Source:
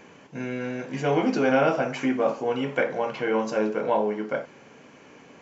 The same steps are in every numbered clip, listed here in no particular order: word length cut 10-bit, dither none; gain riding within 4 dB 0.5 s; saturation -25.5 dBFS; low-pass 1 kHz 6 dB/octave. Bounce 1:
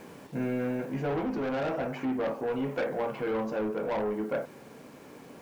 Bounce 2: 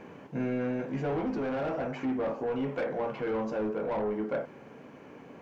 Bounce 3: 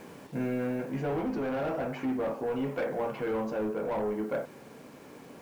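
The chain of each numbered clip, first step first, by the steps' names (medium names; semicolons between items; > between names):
low-pass > word length cut > saturation > gain riding; saturation > gain riding > word length cut > low-pass; saturation > low-pass > word length cut > gain riding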